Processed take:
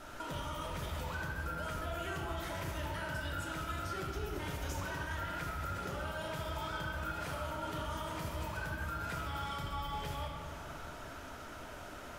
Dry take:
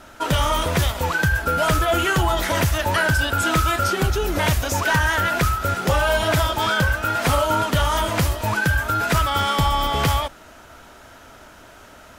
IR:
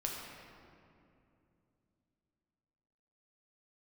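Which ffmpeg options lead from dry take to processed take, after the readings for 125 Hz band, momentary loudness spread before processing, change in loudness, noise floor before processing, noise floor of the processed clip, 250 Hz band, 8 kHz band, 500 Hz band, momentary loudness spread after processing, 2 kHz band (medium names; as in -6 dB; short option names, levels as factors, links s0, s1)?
-18.5 dB, 3 LU, -20.0 dB, -45 dBFS, -47 dBFS, -18.0 dB, -21.0 dB, -19.0 dB, 7 LU, -19.5 dB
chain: -filter_complex "[0:a]alimiter=limit=0.106:level=0:latency=1,acompressor=threshold=0.0178:ratio=6[s0];[1:a]atrim=start_sample=2205[s1];[s0][s1]afir=irnorm=-1:irlink=0,volume=0.562"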